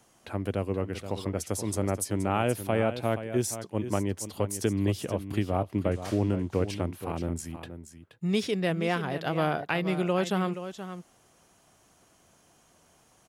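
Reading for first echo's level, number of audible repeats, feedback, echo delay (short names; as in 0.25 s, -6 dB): -11.0 dB, 1, no steady repeat, 0.476 s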